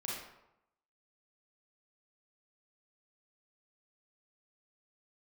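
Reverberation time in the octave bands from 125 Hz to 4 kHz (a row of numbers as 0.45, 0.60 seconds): 0.85, 0.85, 0.85, 0.85, 0.70, 0.55 seconds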